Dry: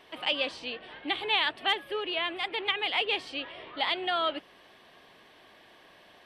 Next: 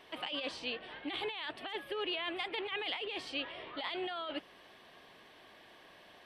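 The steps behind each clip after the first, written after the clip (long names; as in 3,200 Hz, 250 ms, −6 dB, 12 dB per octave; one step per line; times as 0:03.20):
compressor whose output falls as the input rises −33 dBFS, ratio −1
level −5 dB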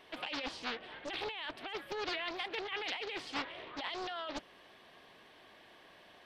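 highs frequency-modulated by the lows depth 0.97 ms
level −1 dB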